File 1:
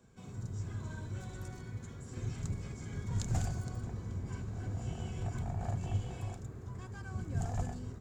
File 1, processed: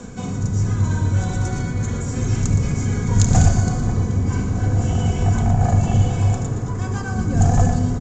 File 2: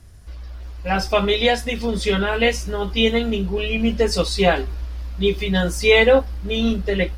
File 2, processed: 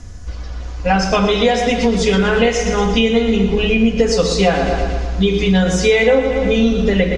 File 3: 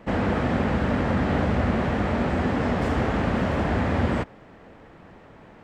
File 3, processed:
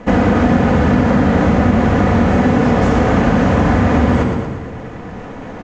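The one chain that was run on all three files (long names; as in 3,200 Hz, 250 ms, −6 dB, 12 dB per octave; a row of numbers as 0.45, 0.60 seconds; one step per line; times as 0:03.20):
rectangular room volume 2,800 cubic metres, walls furnished, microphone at 1.9 metres
reversed playback
upward compression, threshold −35 dBFS
reversed playback
low-pass with resonance 6,700 Hz, resonance Q 4.3
hum removal 62.11 Hz, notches 2
on a send: repeating echo 117 ms, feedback 56%, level −10 dB
on the sum: downward compressor 4 to 1, threshold −21 dBFS
high-shelf EQ 3,500 Hz −10.5 dB
normalise the peak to −1.5 dBFS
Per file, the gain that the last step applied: +17.0, +10.0, +12.0 decibels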